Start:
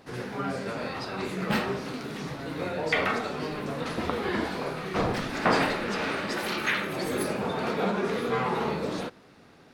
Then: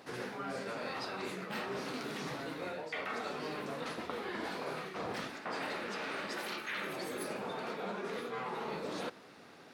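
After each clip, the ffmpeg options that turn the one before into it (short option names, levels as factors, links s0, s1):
-af "highpass=f=320:p=1,areverse,acompressor=threshold=0.0141:ratio=12,areverse,volume=1.12"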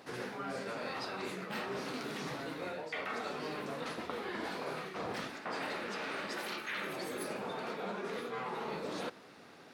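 -af anull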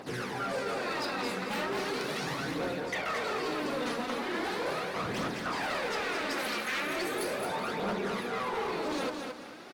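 -af "aphaser=in_gain=1:out_gain=1:delay=4.3:decay=0.55:speed=0.38:type=triangular,asoftclip=type=hard:threshold=0.0188,aecho=1:1:219|438|657|876:0.531|0.154|0.0446|0.0129,volume=1.78"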